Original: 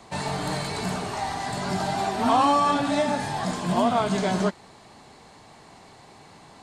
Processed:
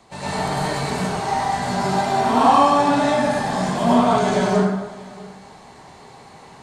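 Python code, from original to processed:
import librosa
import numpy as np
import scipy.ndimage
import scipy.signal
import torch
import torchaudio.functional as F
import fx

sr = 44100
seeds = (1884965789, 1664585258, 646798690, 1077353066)

y = x + 10.0 ** (-22.0 / 20.0) * np.pad(x, (int(642 * sr / 1000.0), 0))[:len(x)]
y = fx.rev_plate(y, sr, seeds[0], rt60_s=1.1, hf_ratio=0.55, predelay_ms=85, drr_db=-9.0)
y = y * librosa.db_to_amplitude(-4.0)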